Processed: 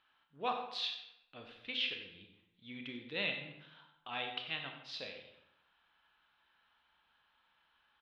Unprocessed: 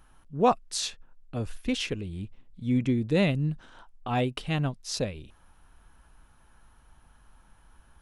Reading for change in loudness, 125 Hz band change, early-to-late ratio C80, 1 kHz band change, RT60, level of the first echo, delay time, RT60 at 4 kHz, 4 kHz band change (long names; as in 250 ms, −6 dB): −10.5 dB, −27.5 dB, 7.5 dB, −11.5 dB, 0.85 s, −12.0 dB, 93 ms, 0.60 s, −2.5 dB